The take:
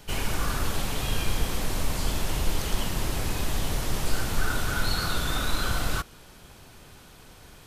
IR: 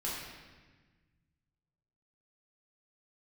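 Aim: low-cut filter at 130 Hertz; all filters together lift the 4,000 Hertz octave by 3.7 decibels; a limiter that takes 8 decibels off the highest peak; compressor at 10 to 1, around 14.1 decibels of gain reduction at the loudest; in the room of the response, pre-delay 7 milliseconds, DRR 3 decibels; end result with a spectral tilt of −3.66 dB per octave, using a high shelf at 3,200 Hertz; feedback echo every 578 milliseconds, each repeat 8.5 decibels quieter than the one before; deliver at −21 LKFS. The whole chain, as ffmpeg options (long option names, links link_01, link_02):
-filter_complex "[0:a]highpass=130,highshelf=frequency=3200:gain=-3,equalizer=frequency=4000:width_type=o:gain=6.5,acompressor=threshold=-39dB:ratio=10,alimiter=level_in=11dB:limit=-24dB:level=0:latency=1,volume=-11dB,aecho=1:1:578|1156|1734|2312:0.376|0.143|0.0543|0.0206,asplit=2[link_01][link_02];[1:a]atrim=start_sample=2205,adelay=7[link_03];[link_02][link_03]afir=irnorm=-1:irlink=0,volume=-7dB[link_04];[link_01][link_04]amix=inputs=2:normalize=0,volume=20.5dB"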